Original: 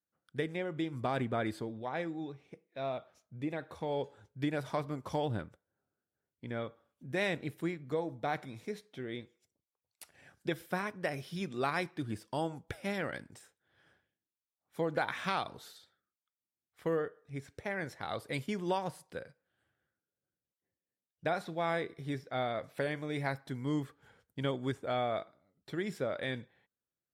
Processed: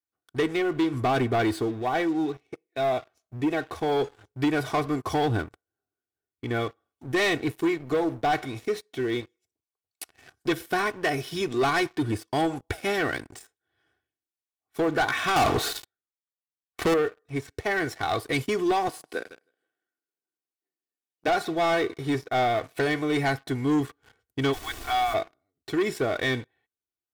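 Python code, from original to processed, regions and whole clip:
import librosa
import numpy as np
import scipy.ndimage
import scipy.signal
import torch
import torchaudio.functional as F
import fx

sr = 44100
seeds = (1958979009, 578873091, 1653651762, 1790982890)

y = fx.chain(x, sr, fx.high_shelf(hz=2700.0, db=-8.5),
    fx.leveller(passes=5), at=(15.36, 16.94))
y = fx.chain(y, sr, fx.highpass(hz=200.0, slope=24),
    fx.echo_feedback(ms=158, feedback_pct=27, wet_db=-14.5), at=(18.88, 21.28))
y = fx.cheby_ripple_highpass(y, sr, hz=730.0, ripple_db=3, at=(24.52, 25.13), fade=0.02)
y = fx.dmg_noise_colour(y, sr, seeds[0], colour='pink', level_db=-53.0, at=(24.52, 25.13), fade=0.02)
y = y + 0.71 * np.pad(y, (int(2.7 * sr / 1000.0), 0))[:len(y)]
y = fx.leveller(y, sr, passes=3)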